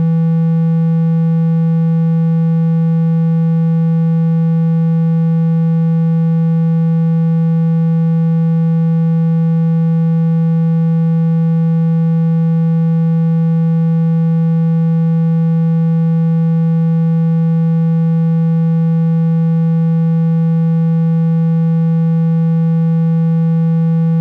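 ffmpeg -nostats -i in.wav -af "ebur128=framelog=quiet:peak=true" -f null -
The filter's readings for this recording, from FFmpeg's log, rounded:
Integrated loudness:
  I:         -13.0 LUFS
  Threshold: -23.0 LUFS
Loudness range:
  LRA:         0.0 LU
  Threshold: -33.0 LUFS
  LRA low:   -13.0 LUFS
  LRA high:  -13.0 LUFS
True peak:
  Peak:       -7.2 dBFS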